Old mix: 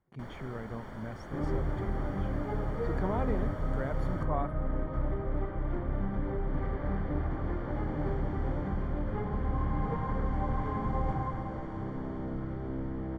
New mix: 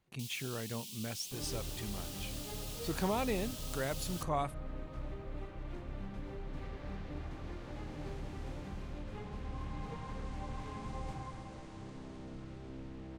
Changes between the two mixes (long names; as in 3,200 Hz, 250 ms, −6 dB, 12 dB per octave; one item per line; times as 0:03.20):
first sound: add Butterworth high-pass 2,700 Hz 48 dB per octave
second sound −11.0 dB
master: remove Savitzky-Golay smoothing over 41 samples